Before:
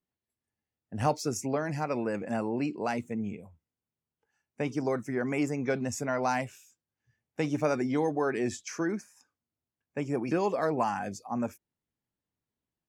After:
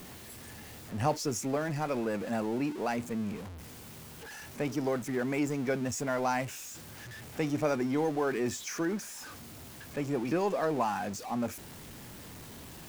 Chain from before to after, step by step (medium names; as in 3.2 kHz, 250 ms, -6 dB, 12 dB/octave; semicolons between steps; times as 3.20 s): jump at every zero crossing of -36.5 dBFS; trim -2.5 dB